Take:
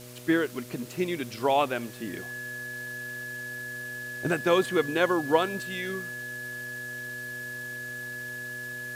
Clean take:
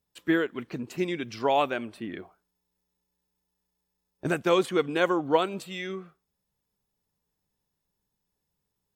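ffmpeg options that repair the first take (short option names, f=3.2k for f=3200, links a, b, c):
-af "bandreject=f=122.8:t=h:w=4,bandreject=f=245.6:t=h:w=4,bandreject=f=368.4:t=h:w=4,bandreject=f=491.2:t=h:w=4,bandreject=f=614:t=h:w=4,bandreject=f=1.7k:w=30,afwtdn=0.004"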